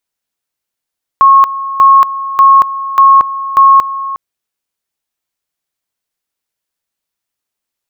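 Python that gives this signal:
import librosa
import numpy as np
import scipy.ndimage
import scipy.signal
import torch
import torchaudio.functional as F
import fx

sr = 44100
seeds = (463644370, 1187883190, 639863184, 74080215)

y = fx.two_level_tone(sr, hz=1090.0, level_db=-1.5, drop_db=14.5, high_s=0.23, low_s=0.36, rounds=5)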